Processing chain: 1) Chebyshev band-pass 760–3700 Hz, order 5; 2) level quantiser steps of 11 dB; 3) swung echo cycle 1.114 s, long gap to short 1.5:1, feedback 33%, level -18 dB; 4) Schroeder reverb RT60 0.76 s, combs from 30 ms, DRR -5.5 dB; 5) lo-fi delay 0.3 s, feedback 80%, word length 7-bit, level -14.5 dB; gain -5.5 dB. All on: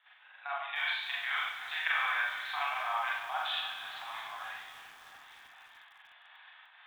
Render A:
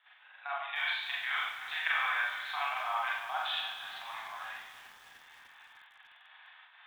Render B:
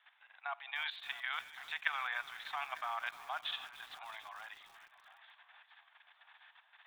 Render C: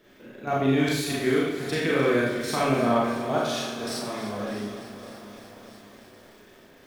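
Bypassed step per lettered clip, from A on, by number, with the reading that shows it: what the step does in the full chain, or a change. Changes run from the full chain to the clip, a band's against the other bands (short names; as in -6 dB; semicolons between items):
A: 3, momentary loudness spread change -5 LU; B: 4, crest factor change +6.5 dB; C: 1, 500 Hz band +20.5 dB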